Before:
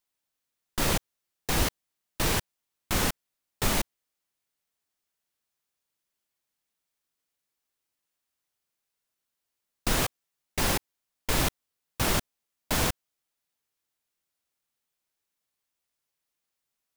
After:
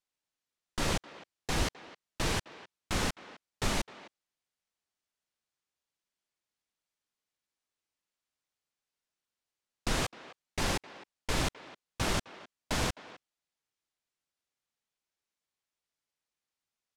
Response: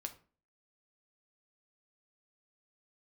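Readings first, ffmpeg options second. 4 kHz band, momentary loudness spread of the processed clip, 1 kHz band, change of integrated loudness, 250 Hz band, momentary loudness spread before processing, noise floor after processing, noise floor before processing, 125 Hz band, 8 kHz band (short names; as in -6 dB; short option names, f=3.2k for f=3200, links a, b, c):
-4.0 dB, 19 LU, -4.0 dB, -5.5 dB, -4.0 dB, 12 LU, under -85 dBFS, -85 dBFS, -4.0 dB, -7.0 dB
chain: -filter_complex "[0:a]lowpass=7.9k,asplit=2[a][b];[b]adelay=260,highpass=300,lowpass=3.4k,asoftclip=type=hard:threshold=-21dB,volume=-16dB[c];[a][c]amix=inputs=2:normalize=0,volume=-4dB"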